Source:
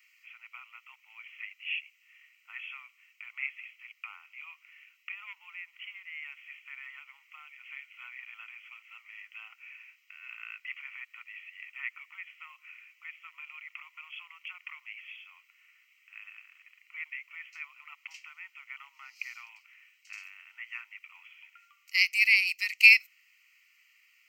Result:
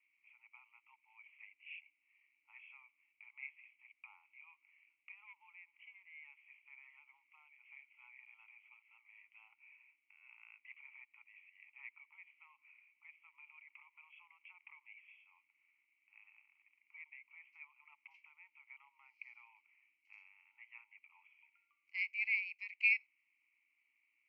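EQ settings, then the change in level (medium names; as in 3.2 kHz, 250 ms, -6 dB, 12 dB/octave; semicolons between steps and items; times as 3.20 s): vowel filter u; tilt EQ -4.5 dB/octave; +4.0 dB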